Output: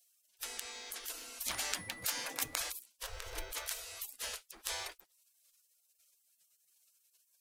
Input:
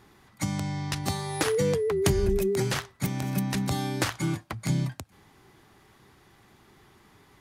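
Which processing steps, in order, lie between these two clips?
spectral gate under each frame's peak -30 dB weak; 3.03–3.52 tilt -3.5 dB/oct; modulation noise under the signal 28 dB; gain +5.5 dB

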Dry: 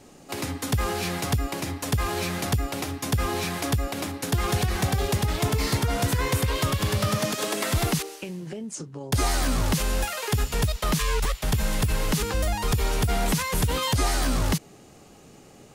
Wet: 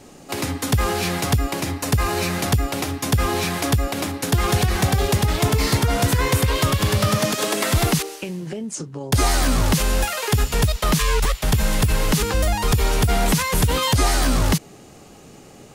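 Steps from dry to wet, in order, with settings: 1.77–2.39 notch 3300 Hz, Q 12; gain +5.5 dB

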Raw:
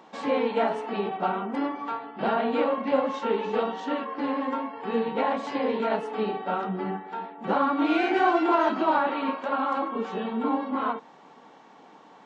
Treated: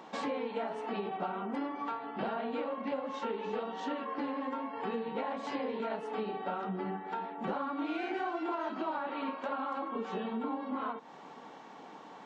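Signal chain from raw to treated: compressor 6:1, threshold -35 dBFS, peak gain reduction 16.5 dB; gain +1.5 dB

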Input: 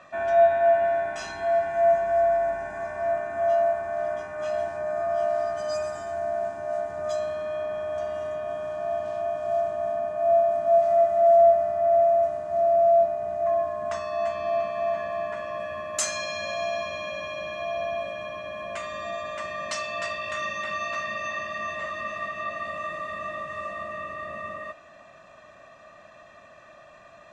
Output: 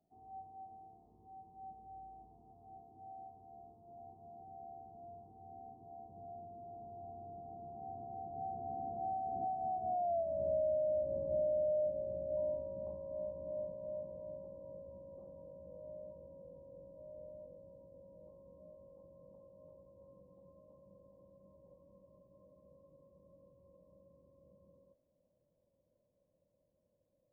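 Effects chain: Doppler pass-by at 10.15, 40 m/s, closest 14 m; compressor 16:1, threshold -34 dBFS, peak gain reduction 21 dB; Gaussian blur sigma 17 samples; gain +12.5 dB

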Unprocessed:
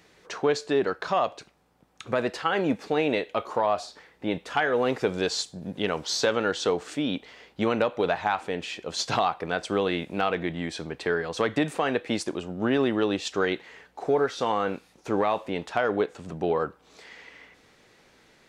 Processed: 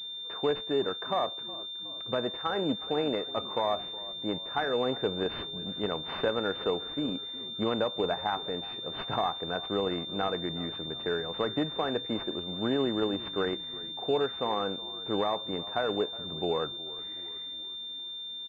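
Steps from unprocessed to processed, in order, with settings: frequency-shifting echo 0.366 s, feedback 54%, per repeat -35 Hz, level -18 dB; pulse-width modulation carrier 3600 Hz; gain -4.5 dB

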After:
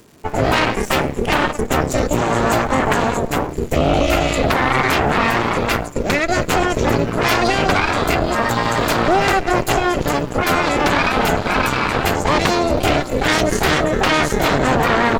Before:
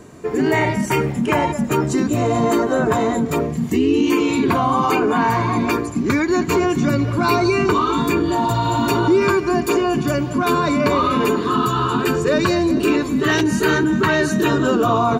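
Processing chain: added harmonics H 3 -14 dB, 6 -9 dB, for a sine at -3 dBFS; crackle 310/s -37 dBFS

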